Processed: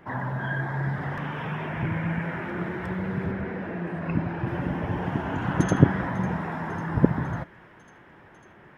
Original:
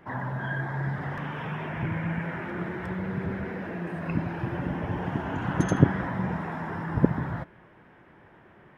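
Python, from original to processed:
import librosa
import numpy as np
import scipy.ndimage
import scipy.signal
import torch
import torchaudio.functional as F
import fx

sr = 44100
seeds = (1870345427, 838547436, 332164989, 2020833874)

y = fx.high_shelf(x, sr, hz=5000.0, db=-11.0, at=(3.31, 4.47))
y = fx.echo_wet_highpass(y, sr, ms=548, feedback_pct=80, hz=1600.0, wet_db=-20.0)
y = y * librosa.db_to_amplitude(2.0)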